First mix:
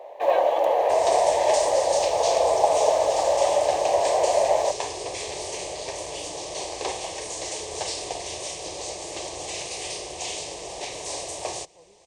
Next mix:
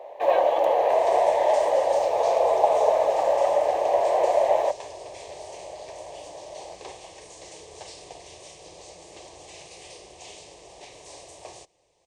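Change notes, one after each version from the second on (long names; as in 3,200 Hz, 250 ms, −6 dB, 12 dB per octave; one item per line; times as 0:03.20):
speech: entry −1.85 s
second sound −11.0 dB
master: add bass and treble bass +2 dB, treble −3 dB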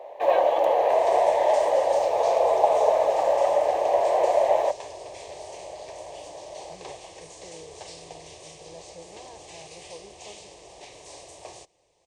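speech +10.0 dB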